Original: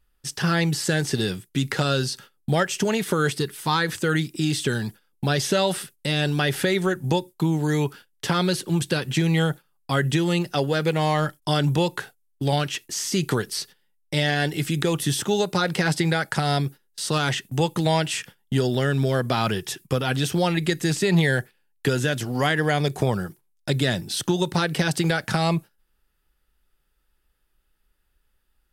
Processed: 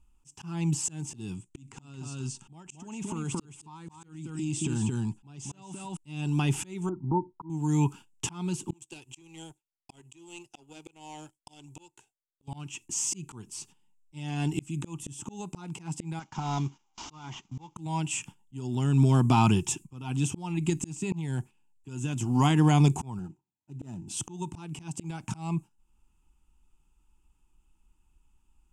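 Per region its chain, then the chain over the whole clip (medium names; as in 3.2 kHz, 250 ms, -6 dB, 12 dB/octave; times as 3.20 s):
1.34–5.97 s: steep low-pass 10 kHz + delay 223 ms -7 dB + compression 16:1, threshold -27 dBFS
6.89–7.50 s: transient shaper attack -6 dB, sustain -1 dB + rippled Chebyshev low-pass 1.4 kHz, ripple 6 dB
8.73–12.48 s: bass shelf 400 Hz -9.5 dB + static phaser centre 470 Hz, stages 4 + power-law waveshaper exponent 1.4
16.19–17.76 s: CVSD coder 32 kbps + bass shelf 480 Hz -10 dB + band-stop 2.6 kHz, Q 8
23.19–24.08 s: median filter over 15 samples + comb of notches 1.1 kHz
whole clip: FFT filter 320 Hz 0 dB, 540 Hz -22 dB, 920 Hz +2 dB, 1.8 kHz -23 dB, 2.6 kHz -3 dB, 4.2 kHz -20 dB, 7.3 kHz +3 dB, 13 kHz -20 dB; slow attack 693 ms; trim +5 dB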